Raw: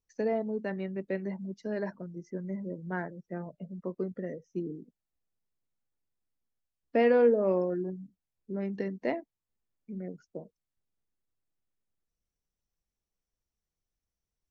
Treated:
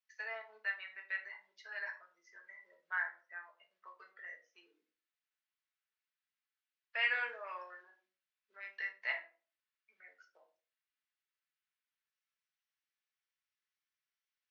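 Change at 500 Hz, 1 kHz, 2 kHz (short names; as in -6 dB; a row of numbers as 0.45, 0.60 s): -25.5, -9.0, +5.5 dB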